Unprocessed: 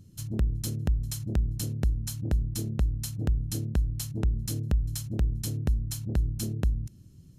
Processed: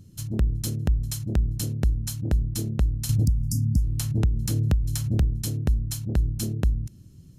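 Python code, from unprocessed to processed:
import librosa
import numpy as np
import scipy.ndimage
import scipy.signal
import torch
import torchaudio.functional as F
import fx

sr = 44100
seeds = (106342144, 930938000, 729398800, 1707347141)

y = fx.spec_erase(x, sr, start_s=3.24, length_s=0.58, low_hz=280.0, high_hz=4600.0)
y = fx.band_squash(y, sr, depth_pct=100, at=(3.09, 5.23))
y = y * librosa.db_to_amplitude(3.5)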